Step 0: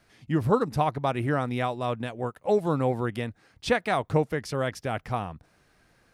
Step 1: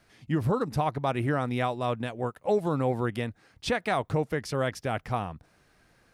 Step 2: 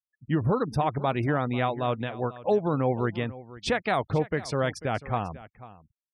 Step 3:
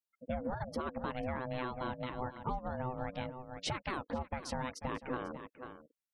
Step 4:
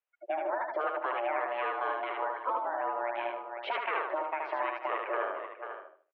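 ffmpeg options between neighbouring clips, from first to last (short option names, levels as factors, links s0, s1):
-af "alimiter=limit=0.15:level=0:latency=1:release=79"
-af "acrusher=bits=8:mix=0:aa=0.5,afftfilt=real='re*gte(hypot(re,im),0.00708)':imag='im*gte(hypot(re,im),0.00708)':win_size=1024:overlap=0.75,aecho=1:1:493:0.133,volume=1.19"
-af "acompressor=threshold=0.0224:ratio=6,aeval=exprs='val(0)*sin(2*PI*380*n/s)':c=same,volume=1.12"
-filter_complex "[0:a]asplit=2[s0][s1];[s1]aecho=0:1:76|152|228|304:0.708|0.212|0.0637|0.0191[s2];[s0][s2]amix=inputs=2:normalize=0,highpass=f=360:t=q:w=0.5412,highpass=f=360:t=q:w=1.307,lowpass=f=2700:t=q:w=0.5176,lowpass=f=2700:t=q:w=0.7071,lowpass=f=2700:t=q:w=1.932,afreqshift=90,volume=2.11"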